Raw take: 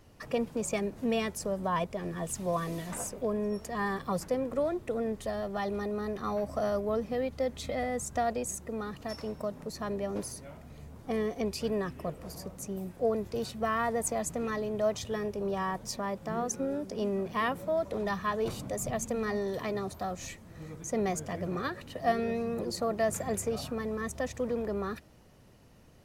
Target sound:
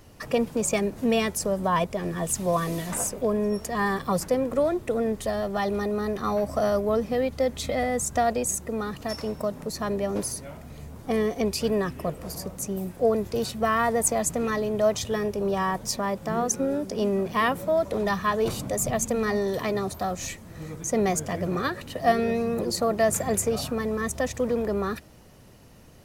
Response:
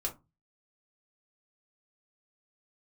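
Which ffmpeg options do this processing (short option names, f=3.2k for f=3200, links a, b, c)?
-af "highshelf=f=6.4k:g=5,volume=6.5dB"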